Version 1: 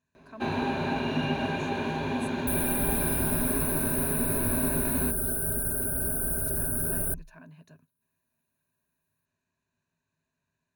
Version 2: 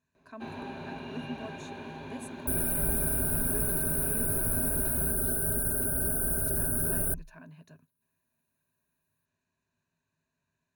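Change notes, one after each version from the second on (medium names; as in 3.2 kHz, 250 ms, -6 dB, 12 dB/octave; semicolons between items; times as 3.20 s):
first sound -11.5 dB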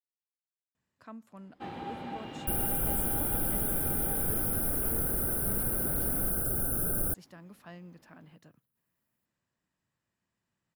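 speech: entry +0.75 s; first sound: entry +1.20 s; master: remove rippled EQ curve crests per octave 1.5, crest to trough 12 dB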